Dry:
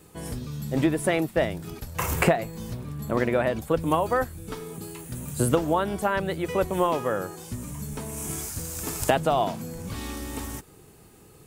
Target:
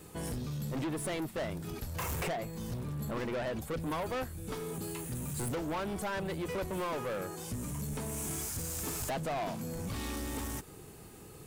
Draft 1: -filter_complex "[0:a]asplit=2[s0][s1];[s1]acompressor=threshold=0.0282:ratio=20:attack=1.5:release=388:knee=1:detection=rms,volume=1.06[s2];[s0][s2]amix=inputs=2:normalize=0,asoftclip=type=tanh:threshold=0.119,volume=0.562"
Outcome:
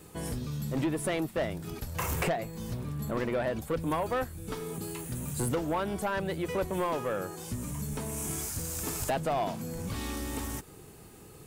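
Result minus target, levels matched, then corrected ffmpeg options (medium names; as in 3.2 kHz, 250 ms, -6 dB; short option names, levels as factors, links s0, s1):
saturation: distortion -6 dB
-filter_complex "[0:a]asplit=2[s0][s1];[s1]acompressor=threshold=0.0282:ratio=20:attack=1.5:release=388:knee=1:detection=rms,volume=1.06[s2];[s0][s2]amix=inputs=2:normalize=0,asoftclip=type=tanh:threshold=0.0447,volume=0.562"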